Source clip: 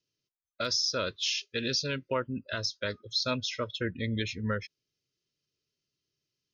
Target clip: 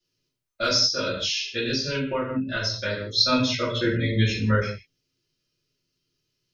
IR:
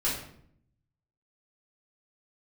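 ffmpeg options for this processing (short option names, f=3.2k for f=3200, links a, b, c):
-filter_complex "[1:a]atrim=start_sample=2205,afade=t=out:st=0.25:d=0.01,atrim=end_sample=11466[a];[0:a][a]afir=irnorm=-1:irlink=0,asettb=1/sr,asplit=3[b][c][d];[b]atrim=end=0.864[e];[c]atrim=start=0.86:end=3.11,asetpts=PTS-STARTPTS,afade=t=in:d=0.004:c=qsin,afade=t=out:st=2.246:d=0.004:c=qsin,acompressor=threshold=-23dB:ratio=6[f];[d]atrim=start=3.106[g];[e][f]acrossfade=d=0.004:c1=hsin:c2=qsin[h];[h][g]acrossfade=d=0.004:c1=qsin:c2=hsin"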